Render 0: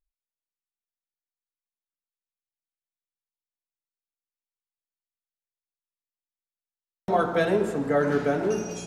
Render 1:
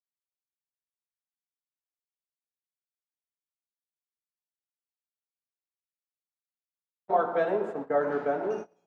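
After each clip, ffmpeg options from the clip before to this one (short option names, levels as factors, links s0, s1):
-af "bandpass=f=770:t=q:w=1.1:csg=0,agate=range=0.0398:threshold=0.02:ratio=16:detection=peak"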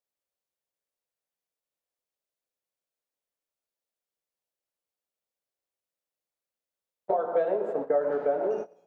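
-af "acompressor=threshold=0.02:ratio=6,equalizer=f=540:t=o:w=0.9:g=12,volume=1.26"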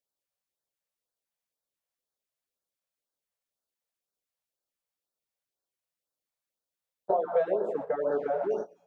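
-af "afftfilt=real='re*(1-between(b*sr/1024,280*pow(2600/280,0.5+0.5*sin(2*PI*2*pts/sr))/1.41,280*pow(2600/280,0.5+0.5*sin(2*PI*2*pts/sr))*1.41))':imag='im*(1-between(b*sr/1024,280*pow(2600/280,0.5+0.5*sin(2*PI*2*pts/sr))/1.41,280*pow(2600/280,0.5+0.5*sin(2*PI*2*pts/sr))*1.41))':win_size=1024:overlap=0.75"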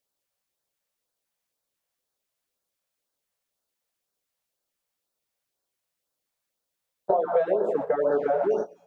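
-af "acompressor=threshold=0.0447:ratio=2.5,volume=2.24"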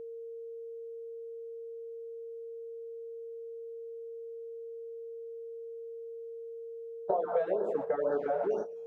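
-af "aeval=exprs='val(0)+0.0224*sin(2*PI*460*n/s)':c=same,volume=0.447"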